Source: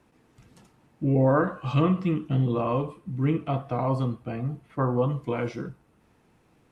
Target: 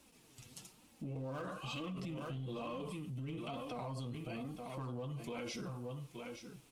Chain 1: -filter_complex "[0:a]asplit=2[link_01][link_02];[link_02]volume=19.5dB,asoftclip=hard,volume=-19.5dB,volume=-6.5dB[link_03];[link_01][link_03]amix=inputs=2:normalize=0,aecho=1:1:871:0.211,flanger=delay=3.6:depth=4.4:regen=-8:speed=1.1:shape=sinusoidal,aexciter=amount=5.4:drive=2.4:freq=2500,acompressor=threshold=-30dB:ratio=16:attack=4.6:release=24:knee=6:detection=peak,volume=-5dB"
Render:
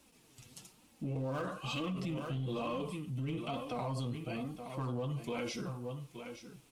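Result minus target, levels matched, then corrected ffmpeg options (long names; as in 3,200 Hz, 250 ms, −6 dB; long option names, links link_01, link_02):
downward compressor: peak gain reduction −5.5 dB
-filter_complex "[0:a]asplit=2[link_01][link_02];[link_02]volume=19.5dB,asoftclip=hard,volume=-19.5dB,volume=-6.5dB[link_03];[link_01][link_03]amix=inputs=2:normalize=0,aecho=1:1:871:0.211,flanger=delay=3.6:depth=4.4:regen=-8:speed=1.1:shape=sinusoidal,aexciter=amount=5.4:drive=2.4:freq=2500,acompressor=threshold=-36dB:ratio=16:attack=4.6:release=24:knee=6:detection=peak,volume=-5dB"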